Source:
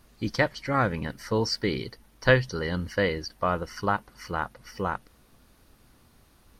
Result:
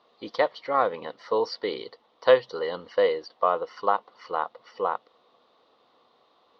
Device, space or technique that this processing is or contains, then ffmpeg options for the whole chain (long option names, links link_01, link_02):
phone earpiece: -af "highpass=470,equalizer=frequency=480:width_type=q:width=4:gain=9,equalizer=frequency=720:width_type=q:width=4:gain=5,equalizer=frequency=1100:width_type=q:width=4:gain=7,equalizer=frequency=1600:width_type=q:width=4:gain=-10,equalizer=frequency=2400:width_type=q:width=4:gain=-7,equalizer=frequency=3700:width_type=q:width=4:gain=6,lowpass=frequency=3900:width=0.5412,lowpass=frequency=3900:width=1.3066"